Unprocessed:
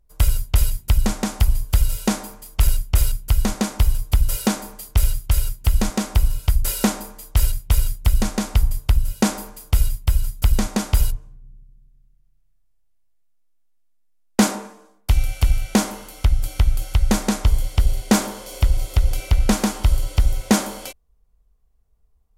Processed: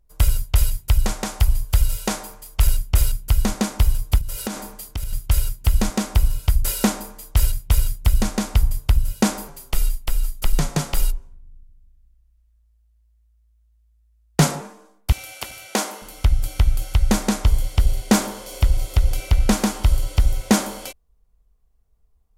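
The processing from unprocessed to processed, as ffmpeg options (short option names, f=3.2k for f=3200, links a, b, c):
-filter_complex "[0:a]asettb=1/sr,asplit=3[a][b][c];[a]atrim=end=0.424[d];[b]atrim=start=0.42:end=2.7,asetpts=PTS-STARTPTS,afade=t=in:d=0.004:c=qsin,afade=t=out:st=2.276:d=0.004:c=qsin,equalizer=f=240:t=o:w=0.77:g=-9[e];[c]atrim=start=2.696[f];[d][e]acrossfade=d=0.004:c1=hsin:c2=qsin[g];[g][f]acrossfade=d=0.004:c1=qsin:c2=hsin,asettb=1/sr,asplit=3[h][i][j];[h]atrim=end=4.184[k];[i]atrim=start=4.18:end=5.13,asetpts=PTS-STARTPTS,afade=t=in:d=0.004:c=qsin,afade=t=out:st=0.946:d=0.004:c=qsin,acompressor=threshold=-23dB:ratio=6:attack=3.2:release=140:knee=1:detection=peak[l];[j]atrim=start=5.126[m];[k][l]acrossfade=d=0.004:c1=hsin:c2=qsin[n];[n][m]acrossfade=d=0.004:c1=qsin:c2=hsin,asettb=1/sr,asplit=3[o][p][q];[o]atrim=end=9.484[r];[p]atrim=start=9.48:end=14.61,asetpts=PTS-STARTPTS,afade=t=in:d=0.004:c=qsin,afade=t=out:st=5.126:d=0.004:c=qsin,afreqshift=-56[s];[q]atrim=start=14.606[t];[r][s]acrossfade=d=0.004:c1=hsin:c2=qsin[u];[u][t]acrossfade=d=0.004:c1=qsin:c2=hsin,asettb=1/sr,asplit=3[v][w][x];[v]atrim=end=15.124[y];[w]atrim=start=15.12:end=16.02,asetpts=PTS-STARTPTS,afade=t=in:d=0.004:c=qsin,afade=t=out:st=0.896:d=0.004:c=qsin,highpass=390[z];[x]atrim=start=16.016[aa];[y][z]acrossfade=d=0.004:c1=hsin:c2=qsin[ab];[ab][aa]acrossfade=d=0.004:c1=qsin:c2=hsin"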